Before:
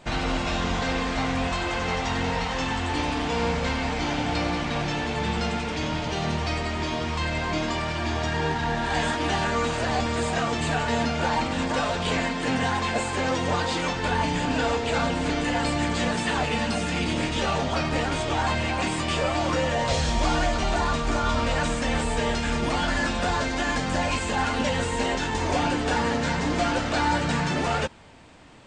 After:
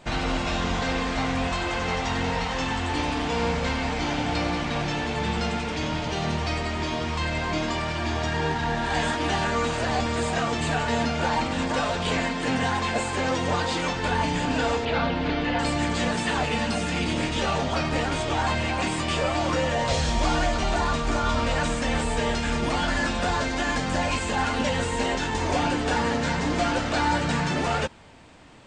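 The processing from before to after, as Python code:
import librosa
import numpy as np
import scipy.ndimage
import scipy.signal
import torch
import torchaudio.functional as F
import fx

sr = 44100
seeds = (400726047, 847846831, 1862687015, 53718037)

y = fx.lowpass(x, sr, hz=4400.0, slope=24, at=(14.85, 15.59))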